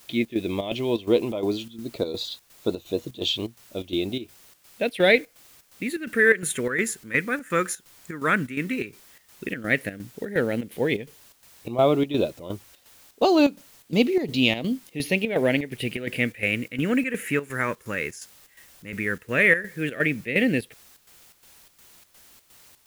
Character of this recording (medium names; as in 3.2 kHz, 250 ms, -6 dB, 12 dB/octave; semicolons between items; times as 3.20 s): phasing stages 4, 0.096 Hz, lowest notch 700–1800 Hz; a quantiser's noise floor 10-bit, dither triangular; chopped level 2.8 Hz, depth 65%, duty 70%